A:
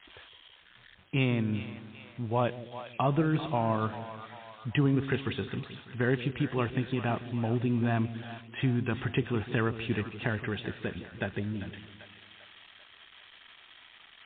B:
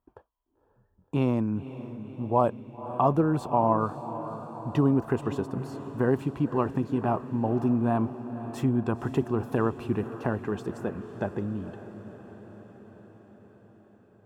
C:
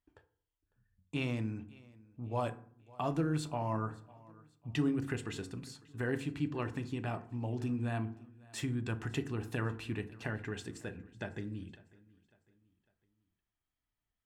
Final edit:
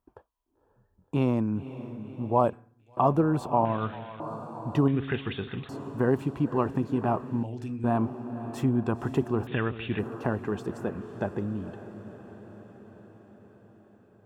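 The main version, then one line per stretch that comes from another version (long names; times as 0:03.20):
B
0:02.53–0:02.97: punch in from C
0:03.65–0:04.20: punch in from A
0:04.88–0:05.69: punch in from A
0:07.43–0:07.84: punch in from C
0:09.47–0:09.99: punch in from A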